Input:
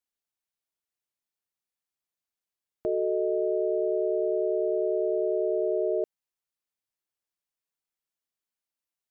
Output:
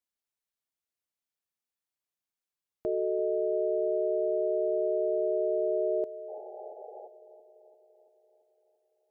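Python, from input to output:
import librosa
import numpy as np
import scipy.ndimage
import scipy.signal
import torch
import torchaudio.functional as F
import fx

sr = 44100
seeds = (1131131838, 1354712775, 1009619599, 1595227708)

y = fx.spec_paint(x, sr, seeds[0], shape='noise', start_s=6.28, length_s=0.8, low_hz=360.0, high_hz=860.0, level_db=-44.0)
y = fx.echo_wet_bandpass(y, sr, ms=339, feedback_pct=61, hz=410.0, wet_db=-15)
y = F.gain(torch.from_numpy(y), -2.5).numpy()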